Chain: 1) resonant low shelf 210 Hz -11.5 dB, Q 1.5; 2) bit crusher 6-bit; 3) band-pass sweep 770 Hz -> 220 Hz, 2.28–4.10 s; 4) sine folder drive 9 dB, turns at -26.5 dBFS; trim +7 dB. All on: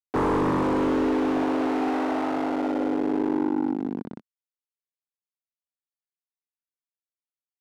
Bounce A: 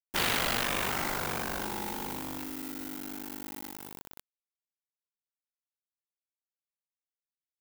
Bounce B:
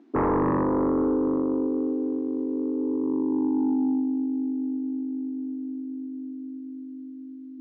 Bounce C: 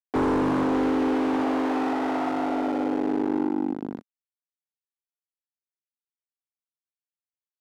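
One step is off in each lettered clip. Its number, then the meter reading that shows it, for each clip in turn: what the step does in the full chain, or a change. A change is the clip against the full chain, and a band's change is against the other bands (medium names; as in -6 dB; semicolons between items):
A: 3, 4 kHz band +17.5 dB; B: 2, distortion -13 dB; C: 1, 125 Hz band -3.0 dB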